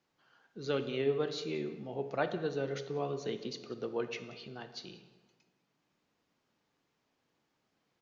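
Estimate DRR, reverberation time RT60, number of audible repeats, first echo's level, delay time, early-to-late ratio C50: 9.0 dB, 1.3 s, 1, -21.5 dB, 183 ms, 10.5 dB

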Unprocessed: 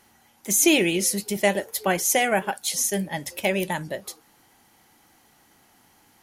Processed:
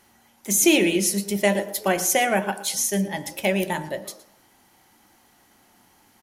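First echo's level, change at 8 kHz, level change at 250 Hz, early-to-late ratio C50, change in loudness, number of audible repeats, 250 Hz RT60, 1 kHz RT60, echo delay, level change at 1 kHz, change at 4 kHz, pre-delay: -18.5 dB, 0.0 dB, +2.5 dB, 13.5 dB, +1.0 dB, 1, 0.55 s, 0.70 s, 116 ms, +0.5 dB, 0.0 dB, 3 ms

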